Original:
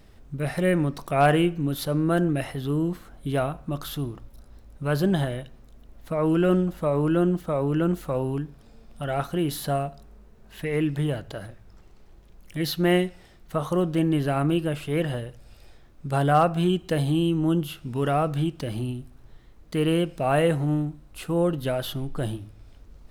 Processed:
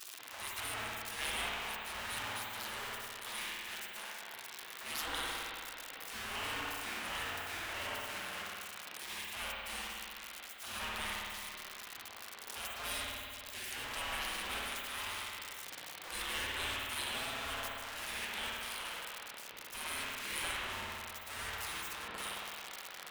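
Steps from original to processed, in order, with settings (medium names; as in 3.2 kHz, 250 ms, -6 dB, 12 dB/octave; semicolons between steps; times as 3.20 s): jump at every zero crossing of -31.5 dBFS; spectral gate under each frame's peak -30 dB weak; spring tank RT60 2.2 s, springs 55 ms, chirp 60 ms, DRR -3.5 dB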